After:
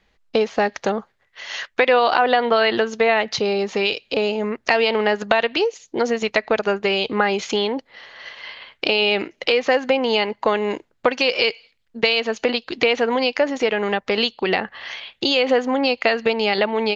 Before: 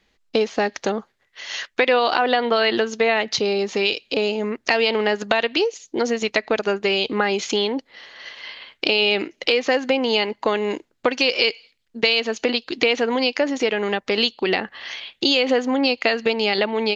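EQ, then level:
parametric band 300 Hz −6.5 dB 1.1 octaves
high-shelf EQ 2,600 Hz −9 dB
+4.5 dB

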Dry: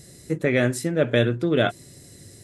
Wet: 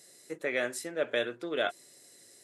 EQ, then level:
high-pass filter 510 Hz 12 dB per octave
−6.5 dB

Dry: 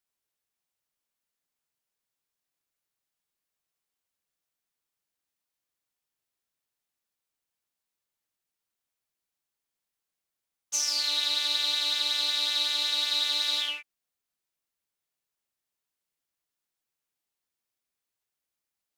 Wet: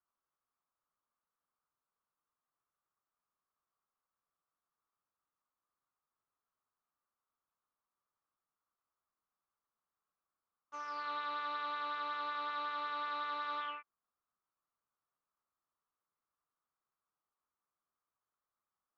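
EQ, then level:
low-pass with resonance 1,200 Hz, resonance Q 4.9
high-frequency loss of the air 84 metres
−4.0 dB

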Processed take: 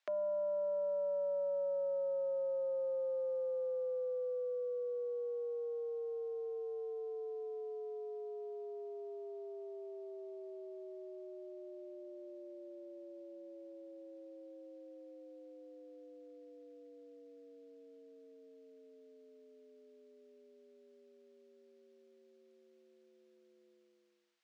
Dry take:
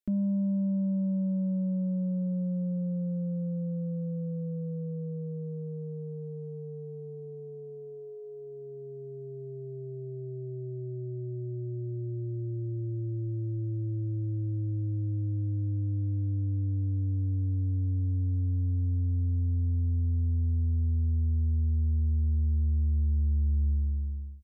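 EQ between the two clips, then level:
Butterworth high-pass 580 Hz 36 dB per octave
high-frequency loss of the air 140 metres
+15.5 dB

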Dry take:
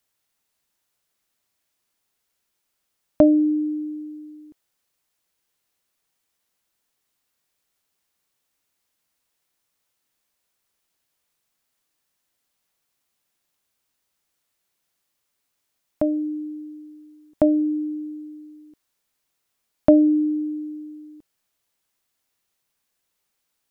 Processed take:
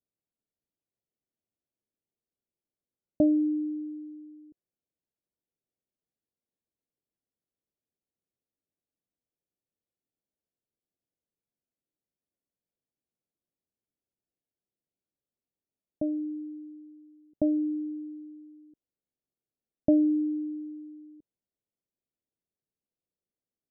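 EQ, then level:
Gaussian smoothing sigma 18 samples
spectral tilt +2.5 dB per octave
0.0 dB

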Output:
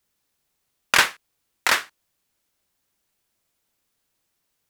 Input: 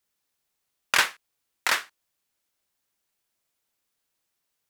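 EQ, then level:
low-shelf EQ 340 Hz +6 dB
+4.0 dB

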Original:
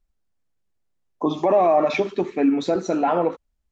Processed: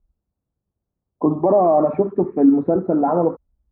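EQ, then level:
high-pass filter 47 Hz
low-pass filter 1,300 Hz 24 dB per octave
spectral tilt −3 dB per octave
0.0 dB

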